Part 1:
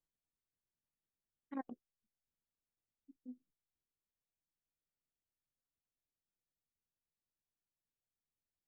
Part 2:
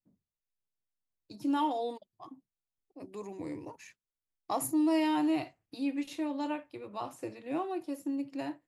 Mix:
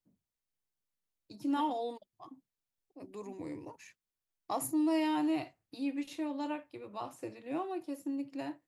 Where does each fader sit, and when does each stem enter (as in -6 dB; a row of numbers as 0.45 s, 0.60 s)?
-2.5 dB, -2.5 dB; 0.00 s, 0.00 s